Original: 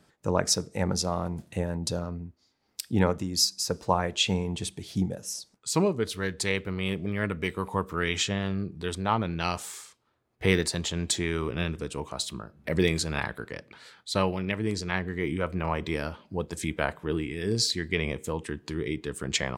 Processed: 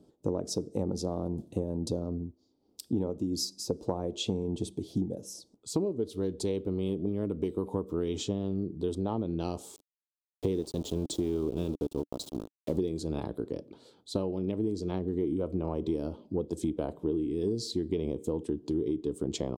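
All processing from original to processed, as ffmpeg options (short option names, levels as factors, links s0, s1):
-filter_complex "[0:a]asettb=1/sr,asplit=3[s0][s1][s2];[s0]atrim=end=9.764[s3];[s1]atrim=start=9.76:end=12.81,asetpts=PTS-STARTPTS,afade=t=in:d=0.004:c=qsin,afade=t=out:st=3.046:d=0.004:c=qsin,lowpass=9400,equalizer=f=730:w=7.2:g=-3,aeval=exprs='val(0)*gte(abs(val(0)),0.02)':c=same[s4];[s2]atrim=start=12.806[s5];[s3][s4]acrossfade=d=0.004:c1=hsin:c2=qsin[s6];[s6][s5]acrossfade=d=0.004:c1=qsin:c2=hsin,firequalizer=gain_entry='entry(170,0);entry(290,10);entry(610,0);entry(1800,-26);entry(3300,-9)':delay=0.05:min_phase=1,acompressor=threshold=0.0501:ratio=12"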